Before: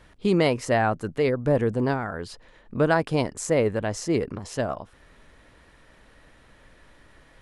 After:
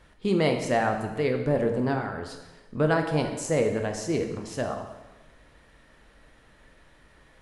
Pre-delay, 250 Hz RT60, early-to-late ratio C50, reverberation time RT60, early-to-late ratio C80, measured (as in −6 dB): 6 ms, 1.1 s, 7.0 dB, 1.1 s, 8.5 dB